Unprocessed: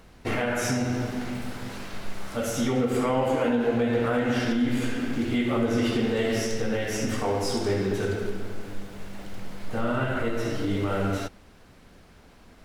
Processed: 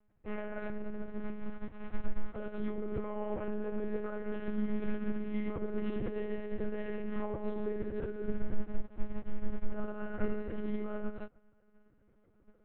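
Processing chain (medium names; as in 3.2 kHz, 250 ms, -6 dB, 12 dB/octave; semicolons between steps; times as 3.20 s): low-pass 2.1 kHz 12 dB/octave; tilt EQ -1.5 dB/octave; peak limiter -21 dBFS, peak gain reduction 9.5 dB; on a send: echo that smears into a reverb 1585 ms, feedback 51%, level -15 dB; on the sum: monotone LPC vocoder at 8 kHz 210 Hz; upward expansion 2.5:1, over -39 dBFS; trim +1 dB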